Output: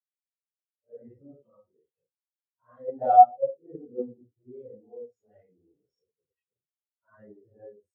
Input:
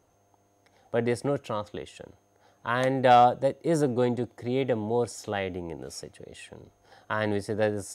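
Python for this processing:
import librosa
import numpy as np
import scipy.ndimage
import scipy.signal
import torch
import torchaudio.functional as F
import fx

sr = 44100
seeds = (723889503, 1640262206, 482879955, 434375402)

p1 = fx.phase_scramble(x, sr, seeds[0], window_ms=200)
p2 = fx.level_steps(p1, sr, step_db=23)
p3 = p1 + F.gain(torch.from_numpy(p2), 0.5).numpy()
p4 = fx.low_shelf(p3, sr, hz=81.0, db=6.0, at=(0.96, 1.57))
y = fx.spectral_expand(p4, sr, expansion=2.5)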